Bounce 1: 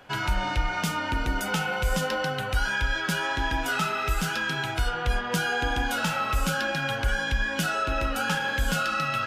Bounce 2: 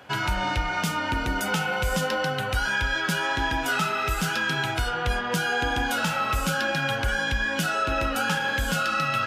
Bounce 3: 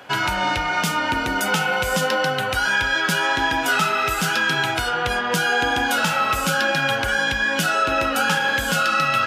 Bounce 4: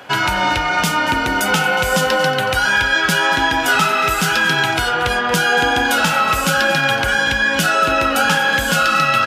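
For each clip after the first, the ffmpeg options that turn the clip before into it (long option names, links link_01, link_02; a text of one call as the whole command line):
ffmpeg -i in.wav -filter_complex "[0:a]highpass=56,asplit=2[link_01][link_02];[link_02]alimiter=limit=-19dB:level=0:latency=1:release=395,volume=0dB[link_03];[link_01][link_03]amix=inputs=2:normalize=0,volume=-3dB" out.wav
ffmpeg -i in.wav -af "highpass=frequency=220:poles=1,volume=6dB" out.wav
ffmpeg -i in.wav -af "aecho=1:1:231:0.2,volume=4.5dB" out.wav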